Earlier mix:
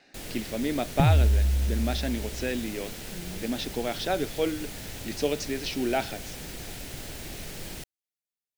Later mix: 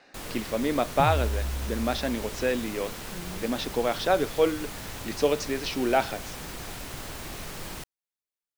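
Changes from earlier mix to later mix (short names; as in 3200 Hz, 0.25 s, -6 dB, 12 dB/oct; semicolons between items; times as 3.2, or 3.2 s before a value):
speech: add bell 510 Hz +6 dB 0.41 oct; second sound -7.5 dB; master: add bell 1100 Hz +11 dB 0.78 oct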